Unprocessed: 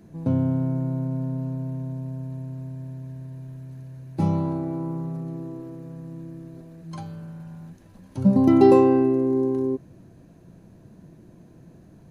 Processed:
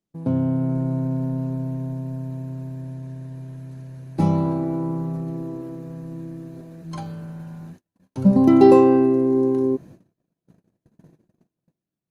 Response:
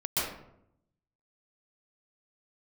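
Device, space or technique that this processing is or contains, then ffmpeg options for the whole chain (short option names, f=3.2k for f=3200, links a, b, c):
video call: -af "highpass=120,dynaudnorm=f=100:g=13:m=3dB,agate=range=-38dB:threshold=-43dB:ratio=16:detection=peak,volume=1.5dB" -ar 48000 -c:a libopus -b:a 32k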